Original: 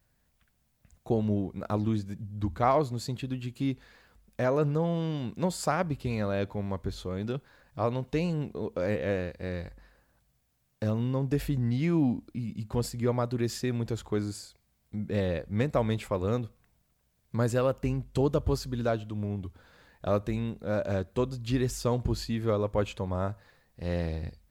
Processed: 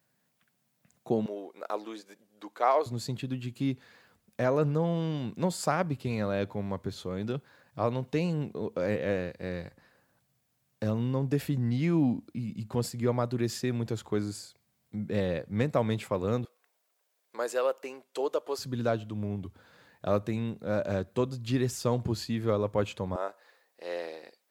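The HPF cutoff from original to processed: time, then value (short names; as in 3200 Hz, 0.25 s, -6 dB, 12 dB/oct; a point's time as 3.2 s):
HPF 24 dB/oct
140 Hz
from 1.26 s 400 Hz
from 2.86 s 100 Hz
from 16.45 s 410 Hz
from 18.58 s 96 Hz
from 23.16 s 380 Hz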